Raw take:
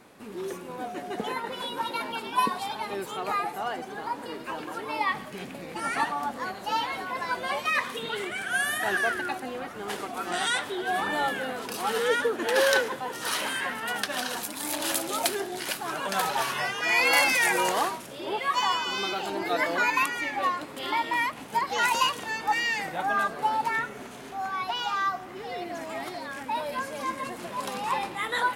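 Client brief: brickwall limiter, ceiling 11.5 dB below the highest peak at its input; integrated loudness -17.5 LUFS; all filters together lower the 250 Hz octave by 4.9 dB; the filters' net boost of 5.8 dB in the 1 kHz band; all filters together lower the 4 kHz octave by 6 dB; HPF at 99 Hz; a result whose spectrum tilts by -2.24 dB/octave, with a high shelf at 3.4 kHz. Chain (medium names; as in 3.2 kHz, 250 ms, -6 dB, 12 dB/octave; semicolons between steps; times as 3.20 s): high-pass 99 Hz; peaking EQ 250 Hz -7.5 dB; peaking EQ 1 kHz +8 dB; treble shelf 3.4 kHz -6.5 dB; peaking EQ 4 kHz -4.5 dB; trim +10.5 dB; peak limiter -7.5 dBFS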